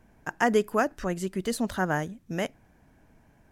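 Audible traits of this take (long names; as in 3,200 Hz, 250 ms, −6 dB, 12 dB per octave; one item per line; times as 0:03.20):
background noise floor −61 dBFS
spectral slope −5.0 dB per octave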